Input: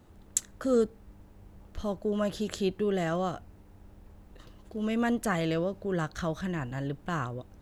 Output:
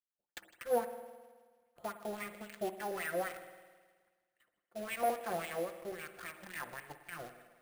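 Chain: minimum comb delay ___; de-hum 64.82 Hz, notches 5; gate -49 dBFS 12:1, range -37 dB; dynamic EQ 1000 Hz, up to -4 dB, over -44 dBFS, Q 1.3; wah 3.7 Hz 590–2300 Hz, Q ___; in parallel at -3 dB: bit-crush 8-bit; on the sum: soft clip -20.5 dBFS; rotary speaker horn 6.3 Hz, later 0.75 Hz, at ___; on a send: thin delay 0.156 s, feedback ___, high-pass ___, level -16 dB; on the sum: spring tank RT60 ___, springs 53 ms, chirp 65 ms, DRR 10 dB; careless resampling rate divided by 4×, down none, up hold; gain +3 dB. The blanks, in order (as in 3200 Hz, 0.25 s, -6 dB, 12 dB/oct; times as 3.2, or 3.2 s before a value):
5.7 ms, 4.1, 2.72, 56%, 2900 Hz, 1.5 s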